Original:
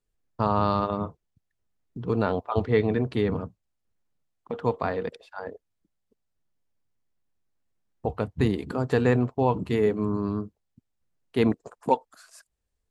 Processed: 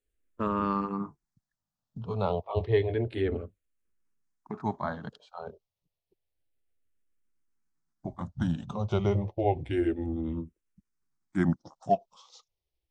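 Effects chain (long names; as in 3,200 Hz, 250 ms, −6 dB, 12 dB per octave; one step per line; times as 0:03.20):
pitch glide at a constant tempo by −5 semitones starting unshifted
frequency shifter mixed with the dry sound −0.3 Hz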